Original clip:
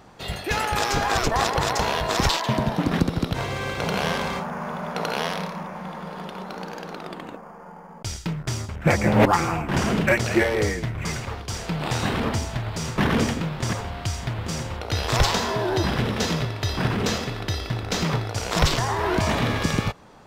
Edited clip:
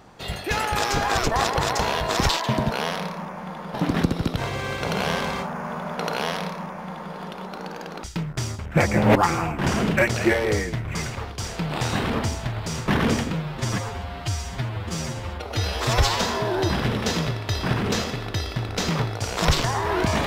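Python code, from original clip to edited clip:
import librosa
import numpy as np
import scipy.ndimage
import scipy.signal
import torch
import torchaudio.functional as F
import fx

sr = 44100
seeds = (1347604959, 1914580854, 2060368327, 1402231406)

y = fx.edit(x, sr, fx.duplicate(start_s=5.09, length_s=1.03, to_s=2.71),
    fx.cut(start_s=7.01, length_s=1.13),
    fx.stretch_span(start_s=13.43, length_s=1.92, factor=1.5), tone=tone)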